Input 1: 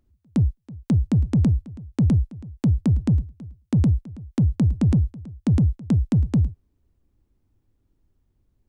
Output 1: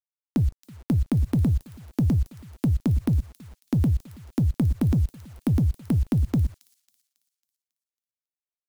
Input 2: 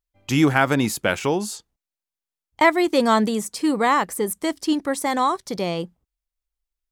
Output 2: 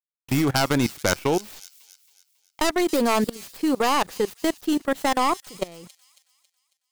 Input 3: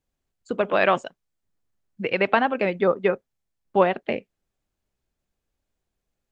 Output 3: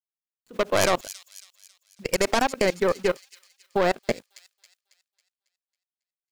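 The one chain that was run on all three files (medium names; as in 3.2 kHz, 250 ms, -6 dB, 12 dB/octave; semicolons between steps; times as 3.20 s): tracing distortion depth 0.49 ms; dynamic bell 200 Hz, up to -5 dB, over -36 dBFS, Q 5.5; word length cut 8-bit, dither none; level held to a coarse grid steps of 23 dB; feedback echo behind a high-pass 274 ms, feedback 45%, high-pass 4.9 kHz, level -8.5 dB; trim +3 dB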